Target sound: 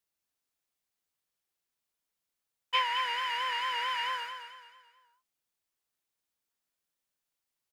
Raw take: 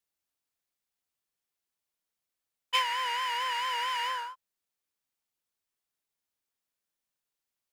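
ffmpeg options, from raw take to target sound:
-filter_complex "[0:a]acrossover=split=4100[a][b];[b]acompressor=threshold=-53dB:ratio=4:attack=1:release=60[c];[a][c]amix=inputs=2:normalize=0,asplit=2[d][e];[e]aecho=0:1:218|436|654|872:0.376|0.147|0.0572|0.0223[f];[d][f]amix=inputs=2:normalize=0"

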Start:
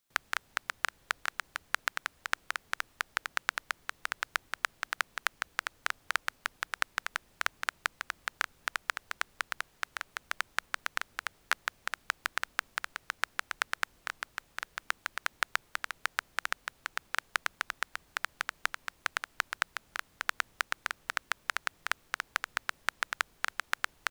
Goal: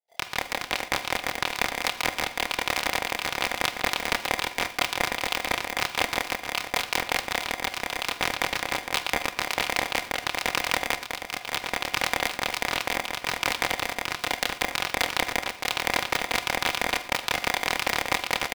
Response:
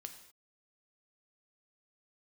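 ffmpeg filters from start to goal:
-filter_complex "[0:a]aecho=1:1:4.2:0.66,atempo=1.3,dynaudnorm=f=390:g=3:m=5.5dB,acrossover=split=180|1700[a][b][c];[c]adelay=80[d];[b]adelay=270[e];[a][e][d]amix=inputs=3:normalize=0,asplit=2[f][g];[1:a]atrim=start_sample=2205,afade=t=out:st=0.17:d=0.01,atrim=end_sample=7938,adelay=27[h];[g][h]afir=irnorm=-1:irlink=0,volume=4dB[i];[f][i]amix=inputs=2:normalize=0,aresample=11025,aresample=44100,aeval=exprs='val(0)*sgn(sin(2*PI*680*n/s))':c=same,volume=3dB"

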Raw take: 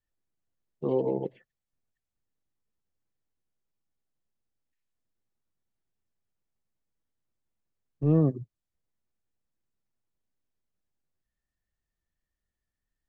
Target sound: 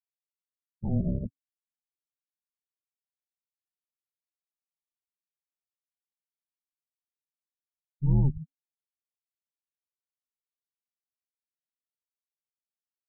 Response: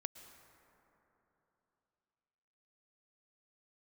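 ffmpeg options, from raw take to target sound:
-af "afftfilt=real='re*gte(hypot(re,im),0.0158)':imag='im*gte(hypot(re,im),0.0158)':win_size=1024:overlap=0.75,asuperstop=centerf=2300:order=12:qfactor=1.8,afreqshift=-280"

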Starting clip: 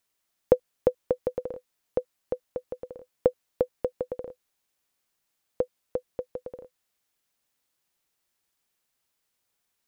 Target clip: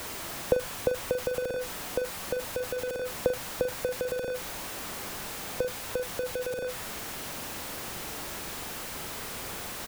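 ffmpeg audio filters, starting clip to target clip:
-filter_complex "[0:a]aeval=exprs='val(0)+0.5*0.0841*sgn(val(0))':c=same,acrossover=split=300|470[a][b][c];[b]acompressor=threshold=-48dB:ratio=6[d];[c]highshelf=f=2k:g=-11[e];[a][d][e]amix=inputs=3:normalize=0,asplit=2[f][g];[g]adelay=42,volume=-10dB[h];[f][h]amix=inputs=2:normalize=0,volume=-2dB"

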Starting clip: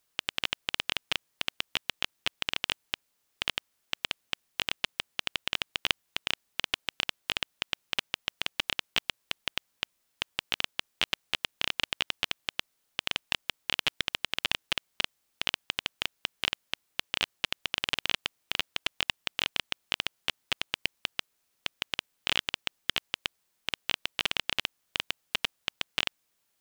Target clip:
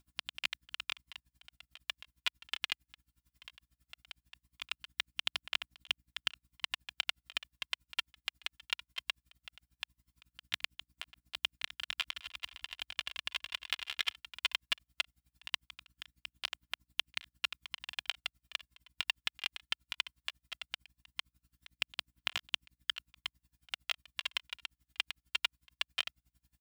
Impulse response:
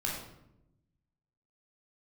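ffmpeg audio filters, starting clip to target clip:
-filter_complex "[0:a]highpass=900,bandreject=f=6.2k:w=14,aecho=1:1:2.9:0.78,alimiter=limit=-13dB:level=0:latency=1:release=454,aeval=exprs='val(0)+0.000316*(sin(2*PI*60*n/s)+sin(2*PI*2*60*n/s)/2+sin(2*PI*3*60*n/s)/3+sin(2*PI*4*60*n/s)/4+sin(2*PI*5*60*n/s)/5)':c=same,aphaser=in_gain=1:out_gain=1:delay=2.5:decay=0.35:speed=0.18:type=triangular,asettb=1/sr,asplit=3[a][b][c];[a]atrim=end=11.694[d];[b]atrim=start=11.69:end=14.15,asetpts=PTS-STARTPTS,afade=t=in:d=0.004:c=qsin,afade=t=out:st=2.456:d=0.004:c=qsin,aecho=1:1:200|330|414.5|469.4|505.1:0.631|0.398|0.251|0.158|0.1,atrim=end_sample=108486[e];[c]atrim=start=14.146[f];[d][e]acrossfade=d=0.004:c1=hsin:c2=qsin[g];[g][f]acrossfade=d=0.004:c1=qsin:c2=hsin,aeval=exprs='val(0)*pow(10,-29*(0.5-0.5*cos(2*PI*11*n/s))/20)':c=same,volume=1dB"

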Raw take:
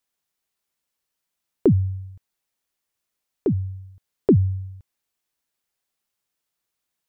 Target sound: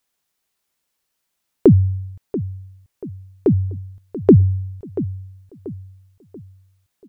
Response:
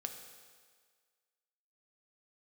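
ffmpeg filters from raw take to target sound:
-filter_complex "[0:a]asplit=2[a][b];[b]adelay=685,lowpass=f=2k:p=1,volume=-13.5dB,asplit=2[c][d];[d]adelay=685,lowpass=f=2k:p=1,volume=0.4,asplit=2[e][f];[f]adelay=685,lowpass=f=2k:p=1,volume=0.4,asplit=2[g][h];[h]adelay=685,lowpass=f=2k:p=1,volume=0.4[i];[a][c][e][g][i]amix=inputs=5:normalize=0,volume=6dB"

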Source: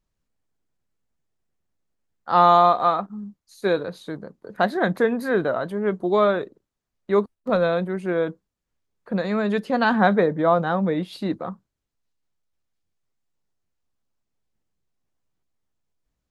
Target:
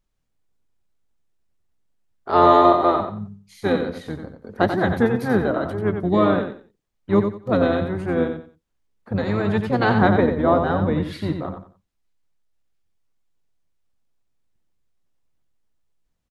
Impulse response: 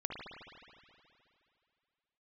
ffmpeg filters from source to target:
-filter_complex "[0:a]aecho=1:1:90|180|270:0.447|0.112|0.0279,asplit=3[a][b][c];[b]asetrate=22050,aresample=44100,atempo=2,volume=-2dB[d];[c]asetrate=35002,aresample=44100,atempo=1.25992,volume=-12dB[e];[a][d][e]amix=inputs=3:normalize=0,volume=-1dB"

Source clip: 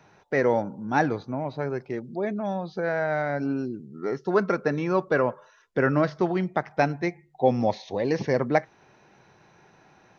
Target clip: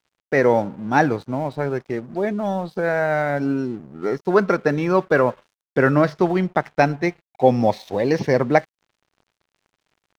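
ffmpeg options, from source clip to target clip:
-af "aeval=exprs='sgn(val(0))*max(abs(val(0))-0.00316,0)':c=same,volume=6dB"

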